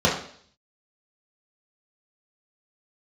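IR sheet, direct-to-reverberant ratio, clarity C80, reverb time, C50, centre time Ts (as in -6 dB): -5.5 dB, 10.0 dB, 0.55 s, 6.0 dB, 32 ms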